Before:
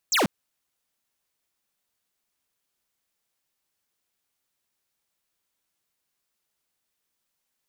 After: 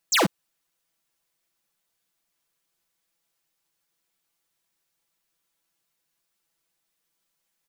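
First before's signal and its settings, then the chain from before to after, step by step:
laser zap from 8 kHz, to 150 Hz, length 0.14 s square, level -21 dB
comb 6 ms, depth 73%

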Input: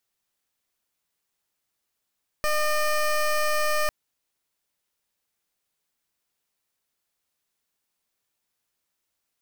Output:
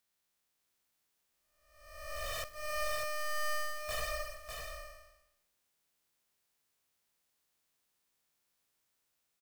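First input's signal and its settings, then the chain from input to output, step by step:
pulse 606 Hz, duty 17% -23 dBFS 1.45 s
spectral blur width 716 ms; wavefolder -33.5 dBFS; delay 598 ms -5 dB

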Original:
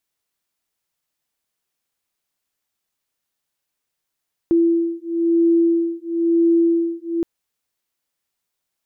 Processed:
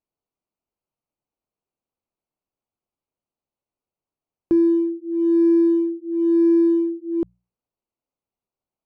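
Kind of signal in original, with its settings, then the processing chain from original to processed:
beating tones 335 Hz, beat 1 Hz, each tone -17.5 dBFS 2.72 s
local Wiener filter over 25 samples; hum notches 60/120/180 Hz

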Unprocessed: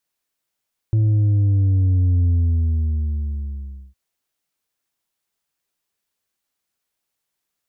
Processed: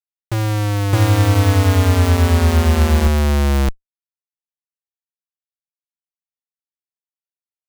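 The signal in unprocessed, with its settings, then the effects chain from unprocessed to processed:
sub drop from 110 Hz, over 3.01 s, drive 4 dB, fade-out 1.68 s, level -14 dB
graphic EQ 125/250/500 Hz +10/+10/+11 dB; Schmitt trigger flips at -23.5 dBFS; on a send: reverse echo 614 ms -3.5 dB

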